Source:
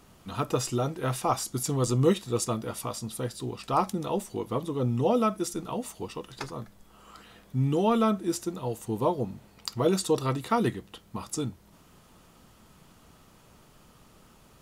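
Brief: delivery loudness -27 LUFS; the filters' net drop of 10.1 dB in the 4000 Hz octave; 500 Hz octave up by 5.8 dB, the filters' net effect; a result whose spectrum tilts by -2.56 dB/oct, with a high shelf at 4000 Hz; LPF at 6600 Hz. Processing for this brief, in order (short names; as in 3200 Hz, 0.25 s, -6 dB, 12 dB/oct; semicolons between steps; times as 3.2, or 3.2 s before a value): LPF 6600 Hz; bell 500 Hz +7 dB; high shelf 4000 Hz -8.5 dB; bell 4000 Hz -7 dB; gain -1 dB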